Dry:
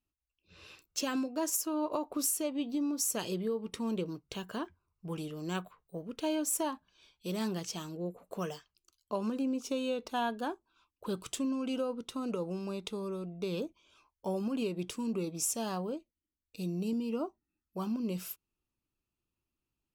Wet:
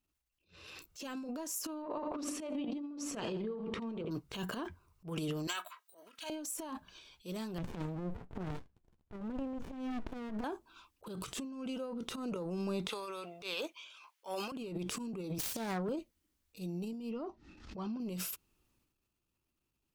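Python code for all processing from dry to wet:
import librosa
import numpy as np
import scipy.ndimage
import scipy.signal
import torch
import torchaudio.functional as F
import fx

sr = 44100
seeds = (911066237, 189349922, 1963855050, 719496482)

y = fx.chain(x, sr, fx.lowpass(hz=2700.0, slope=12),
    fx.hum_notches(base_hz=60, count=10),
    fx.echo_feedback(ms=83, feedback_pct=31, wet_db=-13.0), at=(1.82, 4.11))
y = fx.chain(y, sr, fx.highpass(hz=1400.0, slope=12),
    fx.comb(ms=3.1, depth=0.54), at=(5.47, 6.3))
y = fx.chain(y, sr, fx.moving_average(points=9),
    fx.running_max(window=65), at=(7.58, 10.44))
y = fx.chain(y, sr, fx.highpass(hz=750.0, slope=12),
    fx.peak_eq(hz=2600.0, db=7.0, octaves=1.5), at=(12.89, 14.52))
y = fx.chain(y, sr, fx.self_delay(depth_ms=0.4),
    fx.band_widen(depth_pct=70), at=(15.38, 15.89))
y = fx.chain(y, sr, fx.lowpass(hz=5300.0, slope=24),
    fx.pre_swell(db_per_s=110.0), at=(17.11, 18.0))
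y = fx.over_compress(y, sr, threshold_db=-37.0, ratio=-0.5)
y = fx.transient(y, sr, attack_db=-12, sustain_db=9)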